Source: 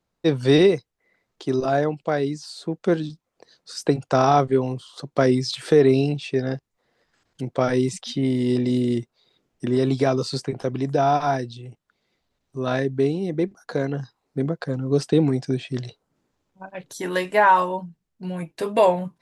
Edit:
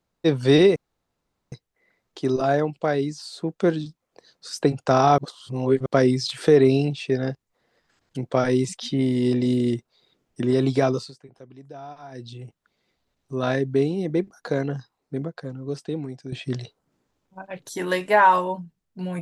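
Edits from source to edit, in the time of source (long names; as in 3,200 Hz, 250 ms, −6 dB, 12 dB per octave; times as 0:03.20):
0:00.76: splice in room tone 0.76 s
0:04.42–0:05.10: reverse
0:10.15–0:11.56: duck −20 dB, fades 0.21 s
0:13.87–0:15.56: fade out quadratic, to −12.5 dB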